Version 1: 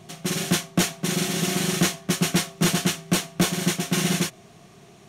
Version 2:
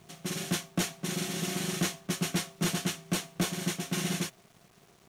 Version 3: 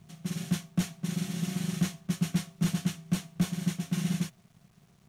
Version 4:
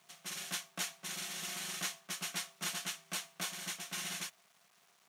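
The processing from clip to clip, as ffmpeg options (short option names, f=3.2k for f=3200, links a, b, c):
-af "aeval=exprs='val(0)*gte(abs(val(0)),0.00422)':c=same,volume=-8.5dB"
-af "lowshelf=f=250:t=q:w=1.5:g=9,volume=-6.5dB"
-af "highpass=800,volume=2dB"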